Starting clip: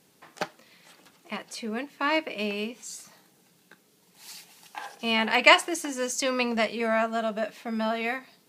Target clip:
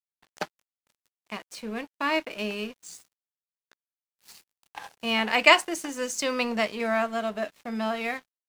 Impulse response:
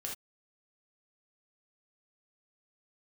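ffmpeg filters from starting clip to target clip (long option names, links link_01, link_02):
-af "aeval=exprs='sgn(val(0))*max(abs(val(0))-0.00562,0)':channel_layout=same"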